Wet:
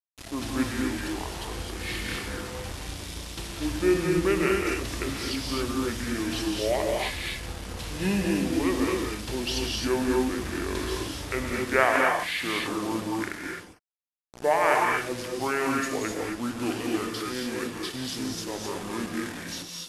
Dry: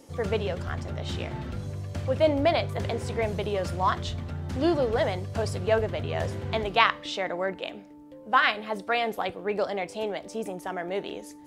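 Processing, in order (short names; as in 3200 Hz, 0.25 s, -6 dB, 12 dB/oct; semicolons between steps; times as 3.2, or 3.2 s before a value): tone controls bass -6 dB, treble +14 dB; requantised 6-bit, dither none; non-linear reverb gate 0.17 s rising, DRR -0.5 dB; speed mistake 78 rpm record played at 45 rpm; gain -3.5 dB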